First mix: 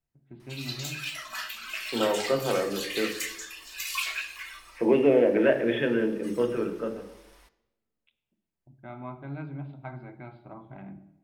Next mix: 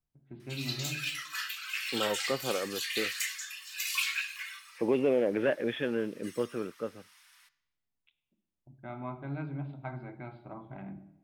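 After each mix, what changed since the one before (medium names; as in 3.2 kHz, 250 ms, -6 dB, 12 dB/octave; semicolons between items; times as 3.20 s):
second voice: send off; background: add high-pass 1.3 kHz 24 dB/octave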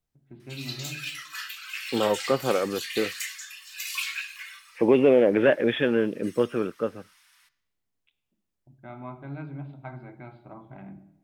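second voice +8.5 dB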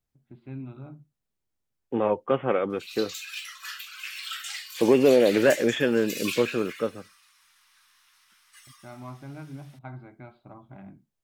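background: entry +2.30 s; reverb: off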